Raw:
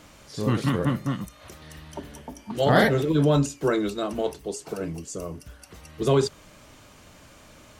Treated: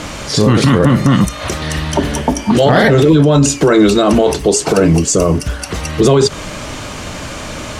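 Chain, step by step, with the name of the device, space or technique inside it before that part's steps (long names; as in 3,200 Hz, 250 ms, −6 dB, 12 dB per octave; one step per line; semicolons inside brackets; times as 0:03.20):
loud club master (downward compressor 3 to 1, threshold −23 dBFS, peak gain reduction 7.5 dB; hard clipping −16.5 dBFS, distortion −32 dB; boost into a limiter +26 dB)
low-pass filter 9,300 Hz 12 dB per octave
level −1 dB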